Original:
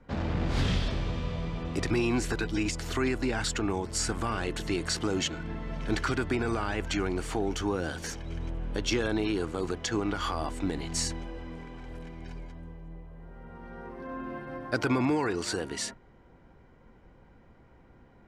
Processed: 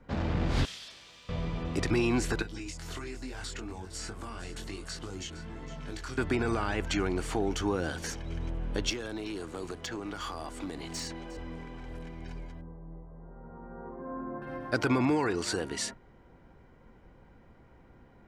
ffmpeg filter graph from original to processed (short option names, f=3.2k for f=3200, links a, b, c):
-filter_complex "[0:a]asettb=1/sr,asplit=3[a][b][c];[a]atrim=end=0.654[d];[b]atrim=start=0.65:end=1.29,asetpts=PTS-STARTPTS,afade=t=in:d=0.004:c=qsin,afade=t=out:st=0.636:d=0.004:c=qsin,aderivative,aeval=exprs='val(0)+0.000316*(sin(2*PI*50*n/s)+sin(2*PI*2*50*n/s)/2+sin(2*PI*3*50*n/s)/3+sin(2*PI*4*50*n/s)/4+sin(2*PI*5*50*n/s)/5)':c=same[e];[c]atrim=start=1.286[f];[d][e]acrossfade=d=0.004:c1=hsin:c2=qsin[g];[g][f]acrossfade=d=0.004:c1=qsin:c2=hsin,asettb=1/sr,asplit=3[h][i][j];[h]atrim=end=2.424[k];[i]atrim=start=2.42:end=6.18,asetpts=PTS-STARTPTS,afade=t=in:d=0.004:c=qsin,afade=t=out:st=3.756:d=0.004:c=qsin,flanger=delay=19.5:depth=3.8:speed=1.2,acrossover=split=92|4500[l][m][n];[l]acompressor=threshold=-44dB:ratio=4[o];[m]acompressor=threshold=-41dB:ratio=4[p];[n]acompressor=threshold=-44dB:ratio=4[q];[o][p][q]amix=inputs=3:normalize=0,aecho=1:1:461:0.2,atrim=end_sample=165816[r];[j]atrim=start=6.176[s];[k][r]acrossfade=d=0.004:c1=hsin:c2=qsin[t];[t][s]acrossfade=d=0.004:c1=qsin:c2=hsin,asettb=1/sr,asplit=3[u][v][w];[u]atrim=end=8.904[x];[v]atrim=start=8.9:end=11.37,asetpts=PTS-STARTPTS,afade=t=in:d=0.004:c=qsin,afade=t=out:st=2.466:d=0.004:c=qsin,acrossover=split=200|5200[y][z][aa];[y]acompressor=threshold=-46dB:ratio=4[ab];[z]acompressor=threshold=-36dB:ratio=4[ac];[aa]acompressor=threshold=-47dB:ratio=4[ad];[ab][ac][ad]amix=inputs=3:normalize=0,aeval=exprs='clip(val(0),-1,0.0251)':c=same,aecho=1:1:358:0.126,atrim=end_sample=108927[ae];[w]atrim=start=11.366[af];[x][ae]acrossfade=d=0.004:c1=hsin:c2=qsin[ag];[ag][af]acrossfade=d=0.004:c1=qsin:c2=hsin,asettb=1/sr,asplit=3[ah][ai][aj];[ah]atrim=end=12.614[ak];[ai]atrim=start=12.61:end=14.42,asetpts=PTS-STARTPTS,afade=t=in:d=0.004:c=qsin,afade=t=out:st=1.806:d=0.004:c=qsin,lowpass=f=1.3k:w=0.5412,lowpass=f=1.3k:w=1.3066,equalizer=f=66:w=1.9:g=-8.5[al];[aj]atrim=start=14.416[am];[ak][al]acrossfade=d=0.004:c1=hsin:c2=qsin[an];[an][am]acrossfade=d=0.004:c1=qsin:c2=hsin"